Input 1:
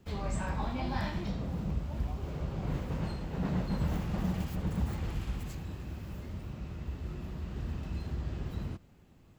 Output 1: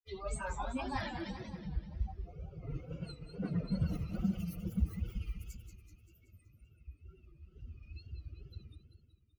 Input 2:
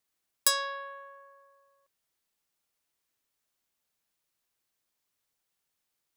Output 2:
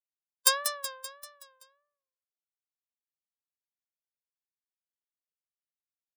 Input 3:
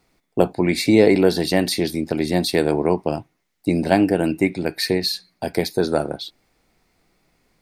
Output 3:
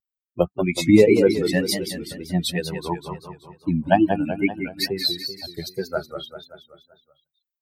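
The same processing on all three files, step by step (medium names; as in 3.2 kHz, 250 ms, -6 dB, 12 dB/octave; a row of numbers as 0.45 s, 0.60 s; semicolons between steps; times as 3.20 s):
expander on every frequency bin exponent 3; on a send: feedback delay 191 ms, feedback 53%, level -8 dB; on the sum: wow and flutter 100 cents; trim +4 dB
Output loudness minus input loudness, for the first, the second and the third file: -3.5 LU, +1.0 LU, -2.0 LU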